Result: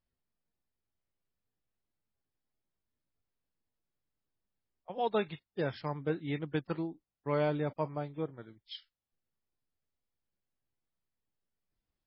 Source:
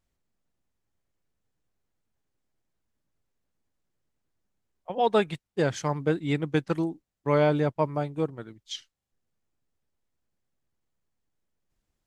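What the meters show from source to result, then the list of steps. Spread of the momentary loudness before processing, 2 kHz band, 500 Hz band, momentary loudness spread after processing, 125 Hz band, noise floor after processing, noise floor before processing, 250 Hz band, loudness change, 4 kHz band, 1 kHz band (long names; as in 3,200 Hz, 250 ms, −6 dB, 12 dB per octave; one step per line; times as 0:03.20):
15 LU, −8.0 dB, −8.5 dB, 16 LU, −8.5 dB, below −85 dBFS, −84 dBFS, −8.5 dB, −8.5 dB, −8.5 dB, −8.5 dB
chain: level −8 dB
MP3 16 kbit/s 12,000 Hz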